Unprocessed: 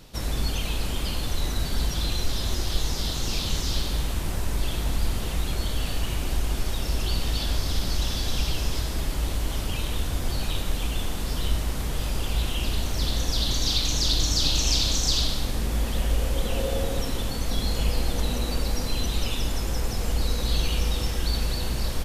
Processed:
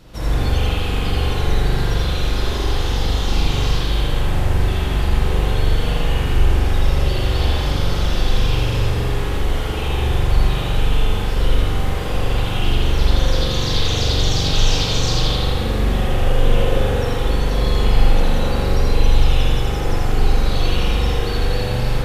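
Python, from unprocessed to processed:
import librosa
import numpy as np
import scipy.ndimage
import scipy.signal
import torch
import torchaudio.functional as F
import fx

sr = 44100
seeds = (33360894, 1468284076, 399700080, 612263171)

p1 = fx.high_shelf(x, sr, hz=3800.0, db=-7.5)
p2 = p1 + fx.echo_single(p1, sr, ms=82, db=-3.5, dry=0)
p3 = fx.rev_spring(p2, sr, rt60_s=1.5, pass_ms=(42,), chirp_ms=45, drr_db=-6.0)
y = p3 * 10.0 ** (2.0 / 20.0)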